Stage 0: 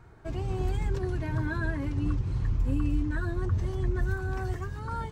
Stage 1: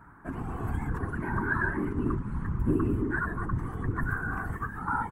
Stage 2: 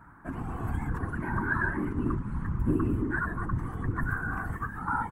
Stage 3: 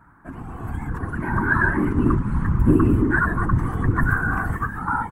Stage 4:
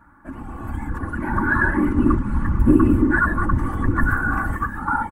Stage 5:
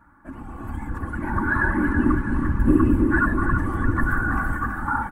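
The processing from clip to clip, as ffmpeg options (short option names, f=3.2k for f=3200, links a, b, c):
-af "firequalizer=gain_entry='entry(160,0);entry(250,14);entry(360,-4);entry(600,-6);entry(980,13);entry(1600,11);entry(2400,-4);entry(4000,-15);entry(5800,-13);entry(9400,6)':delay=0.05:min_phase=1,afftfilt=real='hypot(re,im)*cos(2*PI*random(0))':imag='hypot(re,im)*sin(2*PI*random(1))':win_size=512:overlap=0.75,volume=2.5dB"
-af "equalizer=f=410:t=o:w=0.25:g=-5"
-af "dynaudnorm=f=510:g=5:m=11.5dB"
-af "aecho=1:1:3.5:0.53"
-af "aecho=1:1:327|654|981|1308|1635|1962:0.422|0.223|0.118|0.0628|0.0333|0.0176,volume=-3dB"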